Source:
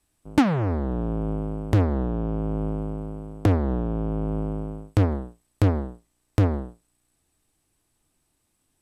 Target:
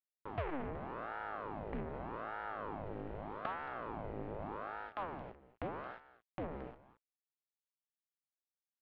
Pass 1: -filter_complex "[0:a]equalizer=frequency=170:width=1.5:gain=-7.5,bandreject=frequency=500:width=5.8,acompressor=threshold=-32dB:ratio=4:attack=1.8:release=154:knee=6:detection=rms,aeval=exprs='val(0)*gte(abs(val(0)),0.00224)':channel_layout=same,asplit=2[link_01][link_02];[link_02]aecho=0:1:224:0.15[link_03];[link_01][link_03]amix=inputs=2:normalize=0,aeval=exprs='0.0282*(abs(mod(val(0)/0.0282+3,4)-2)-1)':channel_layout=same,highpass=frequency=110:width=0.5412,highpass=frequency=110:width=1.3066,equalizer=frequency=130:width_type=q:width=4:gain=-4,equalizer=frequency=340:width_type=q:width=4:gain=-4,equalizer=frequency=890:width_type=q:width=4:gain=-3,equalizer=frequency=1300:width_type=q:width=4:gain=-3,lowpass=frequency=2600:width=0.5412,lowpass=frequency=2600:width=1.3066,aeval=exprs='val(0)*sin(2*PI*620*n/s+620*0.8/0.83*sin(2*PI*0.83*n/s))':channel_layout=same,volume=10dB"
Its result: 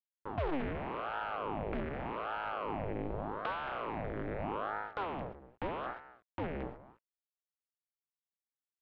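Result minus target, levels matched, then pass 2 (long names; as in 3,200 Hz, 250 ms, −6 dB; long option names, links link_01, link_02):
downward compressor: peak gain reduction −8 dB
-filter_complex "[0:a]equalizer=frequency=170:width=1.5:gain=-7.5,bandreject=frequency=500:width=5.8,acompressor=threshold=-42.5dB:ratio=4:attack=1.8:release=154:knee=6:detection=rms,aeval=exprs='val(0)*gte(abs(val(0)),0.00224)':channel_layout=same,asplit=2[link_01][link_02];[link_02]aecho=0:1:224:0.15[link_03];[link_01][link_03]amix=inputs=2:normalize=0,aeval=exprs='0.0282*(abs(mod(val(0)/0.0282+3,4)-2)-1)':channel_layout=same,highpass=frequency=110:width=0.5412,highpass=frequency=110:width=1.3066,equalizer=frequency=130:width_type=q:width=4:gain=-4,equalizer=frequency=340:width_type=q:width=4:gain=-4,equalizer=frequency=890:width_type=q:width=4:gain=-3,equalizer=frequency=1300:width_type=q:width=4:gain=-3,lowpass=frequency=2600:width=0.5412,lowpass=frequency=2600:width=1.3066,aeval=exprs='val(0)*sin(2*PI*620*n/s+620*0.8/0.83*sin(2*PI*0.83*n/s))':channel_layout=same,volume=10dB"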